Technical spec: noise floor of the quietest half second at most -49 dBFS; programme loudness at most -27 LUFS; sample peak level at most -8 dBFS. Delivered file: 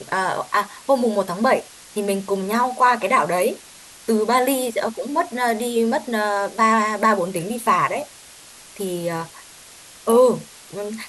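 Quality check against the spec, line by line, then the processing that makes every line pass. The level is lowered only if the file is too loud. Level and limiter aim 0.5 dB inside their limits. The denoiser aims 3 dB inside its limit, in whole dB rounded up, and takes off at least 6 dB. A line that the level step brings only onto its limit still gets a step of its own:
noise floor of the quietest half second -44 dBFS: fail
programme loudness -20.5 LUFS: fail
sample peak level -5.5 dBFS: fail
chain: gain -7 dB

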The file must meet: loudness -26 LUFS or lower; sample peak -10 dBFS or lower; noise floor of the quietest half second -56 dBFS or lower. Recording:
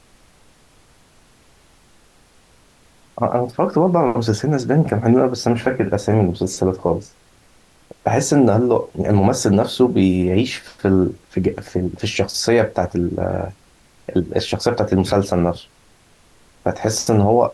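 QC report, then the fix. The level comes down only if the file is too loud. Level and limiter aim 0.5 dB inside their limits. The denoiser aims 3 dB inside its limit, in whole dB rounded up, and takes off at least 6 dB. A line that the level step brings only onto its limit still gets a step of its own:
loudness -18.5 LUFS: fail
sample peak -4.0 dBFS: fail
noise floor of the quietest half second -52 dBFS: fail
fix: gain -8 dB

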